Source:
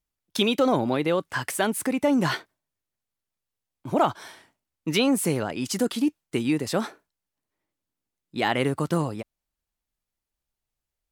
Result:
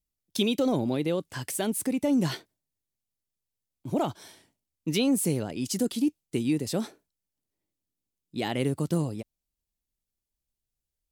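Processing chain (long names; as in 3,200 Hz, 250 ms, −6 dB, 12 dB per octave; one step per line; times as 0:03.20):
parametric band 1,300 Hz −13 dB 2.1 octaves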